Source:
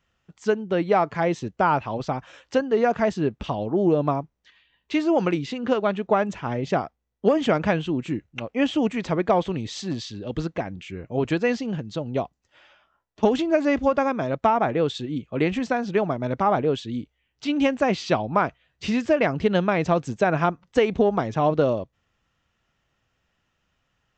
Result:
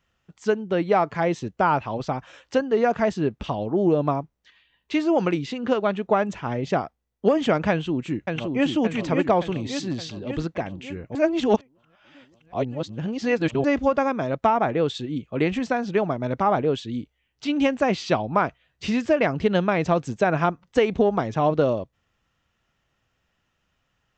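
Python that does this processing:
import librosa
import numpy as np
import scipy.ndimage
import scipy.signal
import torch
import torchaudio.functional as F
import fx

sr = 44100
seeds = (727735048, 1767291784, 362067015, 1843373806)

y = fx.echo_throw(x, sr, start_s=7.7, length_s=0.95, ms=570, feedback_pct=60, wet_db=-4.0)
y = fx.edit(y, sr, fx.reverse_span(start_s=11.15, length_s=2.49), tone=tone)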